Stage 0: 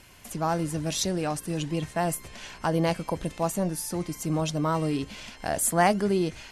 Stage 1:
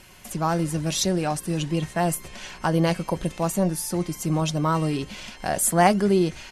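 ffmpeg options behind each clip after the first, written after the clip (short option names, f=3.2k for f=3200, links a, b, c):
-af "aecho=1:1:5.4:0.31,volume=3dB"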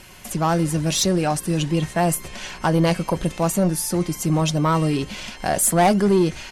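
-af "aeval=exprs='(tanh(5.62*val(0)+0.05)-tanh(0.05))/5.62':c=same,volume=5dB"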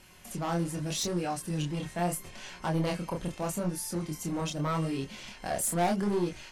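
-af "asoftclip=type=hard:threshold=-14dB,flanger=delay=22.5:depth=6.9:speed=0.79,volume=-8dB"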